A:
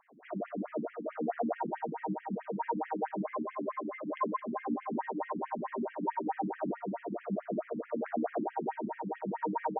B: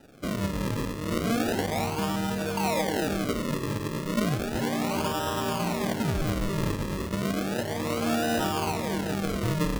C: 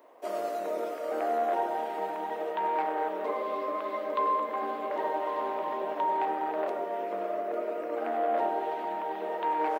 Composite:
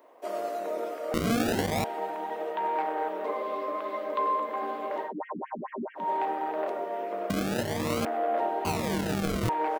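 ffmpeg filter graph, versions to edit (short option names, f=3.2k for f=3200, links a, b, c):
-filter_complex "[1:a]asplit=3[a][b][c];[2:a]asplit=5[d][e][f][g][h];[d]atrim=end=1.142[i];[a]atrim=start=1.138:end=1.842[j];[e]atrim=start=1.838:end=5.13[k];[0:a]atrim=start=4.97:end=6.1[l];[f]atrim=start=5.94:end=7.302[m];[b]atrim=start=7.298:end=8.052[n];[g]atrim=start=8.048:end=8.652[o];[c]atrim=start=8.648:end=9.492[p];[h]atrim=start=9.488[q];[i][j]acrossfade=d=0.004:c1=hsin:c2=hsin[r];[r][k]acrossfade=d=0.004:c1=hsin:c2=hsin[s];[s][l]acrossfade=d=0.16:c1=tri:c2=tri[t];[t][m]acrossfade=d=0.16:c1=tri:c2=tri[u];[u][n]acrossfade=d=0.004:c1=hsin:c2=hsin[v];[v][o]acrossfade=d=0.004:c1=hsin:c2=hsin[w];[w][p]acrossfade=d=0.004:c1=hsin:c2=hsin[x];[x][q]acrossfade=d=0.004:c1=hsin:c2=hsin"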